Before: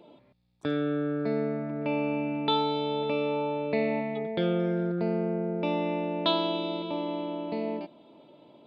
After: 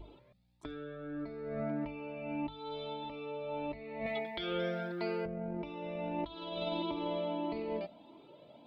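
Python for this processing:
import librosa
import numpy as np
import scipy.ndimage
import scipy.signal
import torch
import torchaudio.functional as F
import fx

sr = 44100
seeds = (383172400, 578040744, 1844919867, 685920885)

y = fx.tilt_eq(x, sr, slope=4.0, at=(4.06, 5.26))
y = fx.add_hum(y, sr, base_hz=50, snr_db=17)
y = fx.over_compress(y, sr, threshold_db=-32.0, ratio=-0.5)
y = fx.hum_notches(y, sr, base_hz=50, count=5)
y = fx.comb_cascade(y, sr, direction='rising', hz=1.6)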